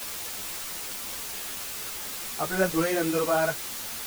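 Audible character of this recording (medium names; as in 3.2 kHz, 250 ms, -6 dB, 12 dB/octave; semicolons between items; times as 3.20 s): a quantiser's noise floor 6-bit, dither triangular; a shimmering, thickened sound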